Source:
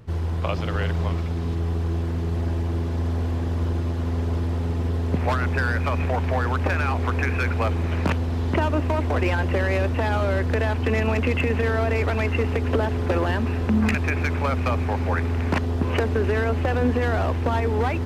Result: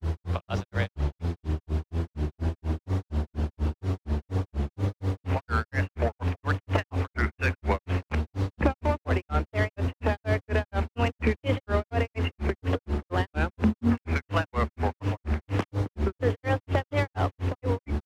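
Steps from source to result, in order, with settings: vibrato 0.61 Hz 12 cents; grains 0.175 s, grains 4.2/s, pitch spread up and down by 3 st

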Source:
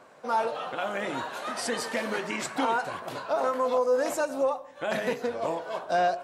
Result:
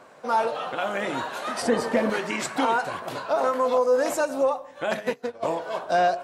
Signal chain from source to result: 1.62–2.1 tilt shelf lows +7.5 dB, about 1400 Hz; 4.94–5.43 upward expander 2.5:1, over -39 dBFS; gain +3.5 dB

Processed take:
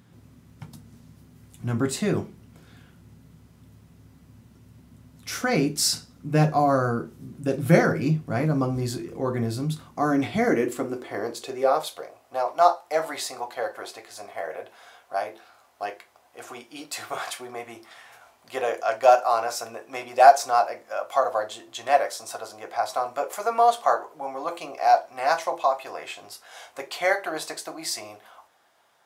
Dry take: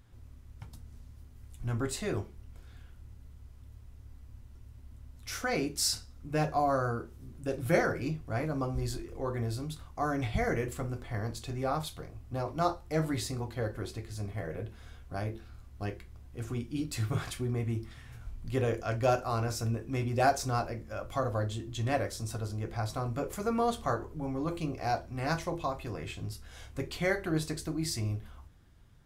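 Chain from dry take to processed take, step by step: high-pass sweep 170 Hz -> 710 Hz, 9.71–12.41; gain +6.5 dB

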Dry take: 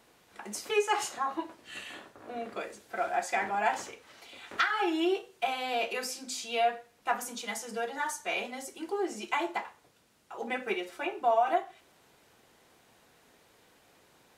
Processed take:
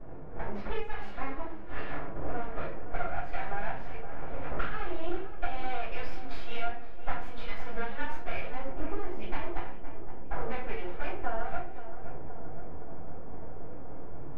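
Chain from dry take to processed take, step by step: 5.91–8.2 tilt shelf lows -4.5 dB; low-pass opened by the level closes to 470 Hz, open at -28.5 dBFS; compressor 10:1, threshold -55 dBFS, peak gain reduction 32.5 dB; half-wave rectifier; air absorption 400 m; darkening echo 0.518 s, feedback 77%, low-pass 1600 Hz, level -11 dB; shoebox room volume 31 m³, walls mixed, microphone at 2.3 m; Doppler distortion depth 0.21 ms; gain +13 dB

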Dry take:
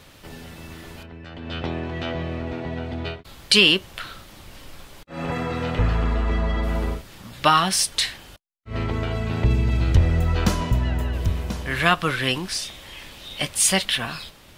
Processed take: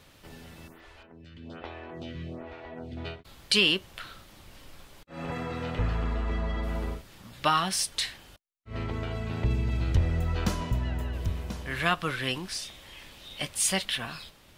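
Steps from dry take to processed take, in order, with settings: 0.68–2.97 photocell phaser 1.2 Hz; gain -7.5 dB

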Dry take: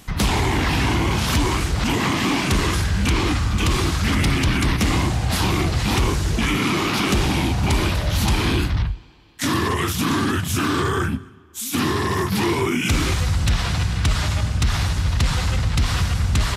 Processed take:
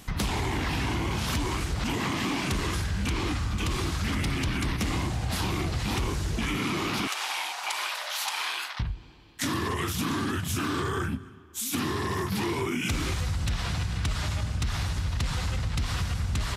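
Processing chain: 7.07–8.8 HPF 770 Hz 24 dB/oct; compressor 3:1, threshold -25 dBFS, peak gain reduction 8 dB; gain -2.5 dB

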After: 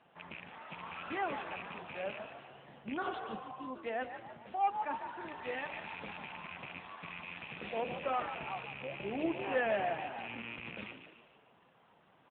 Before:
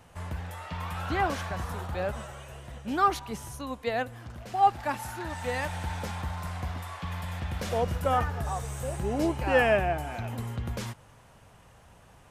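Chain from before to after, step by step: rattling part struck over -34 dBFS, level -24 dBFS; HPF 160 Hz 24 dB/oct; frequency-shifting echo 0.148 s, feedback 48%, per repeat +58 Hz, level -9 dB; soft clip -16.5 dBFS, distortion -17 dB; notches 60/120/180/240/300/360/420/480/540/600 Hz; spectral repair 3.04–3.67, 540–2700 Hz both; gain -6.5 dB; AMR-NB 7.95 kbps 8000 Hz

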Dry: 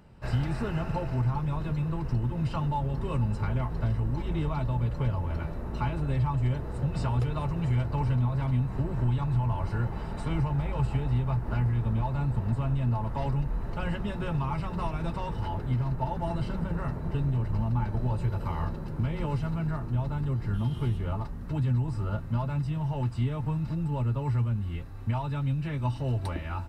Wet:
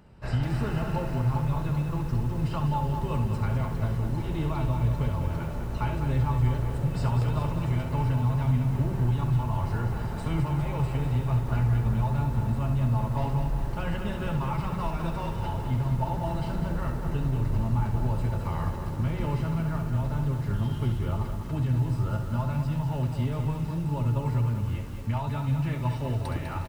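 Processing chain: tapped delay 68/363/815 ms -8.5/-17/-18.5 dB; lo-fi delay 0.201 s, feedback 55%, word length 8-bit, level -7 dB

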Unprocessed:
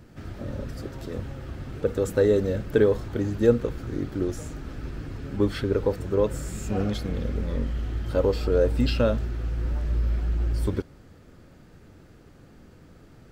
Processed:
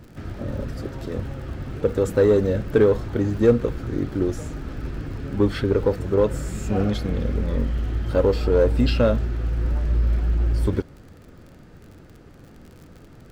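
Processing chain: high shelf 4200 Hz -5.5 dB; crackle 54/s -43 dBFS; in parallel at -3.5 dB: hard clip -18.5 dBFS, distortion -12 dB

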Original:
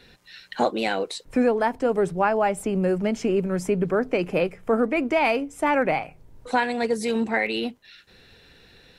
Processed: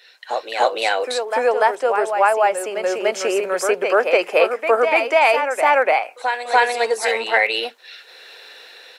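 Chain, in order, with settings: HPF 500 Hz 24 dB/oct; AGC gain up to 14 dB; on a send: reverse echo 0.292 s -6.5 dB; on the sum: gain -2 dB

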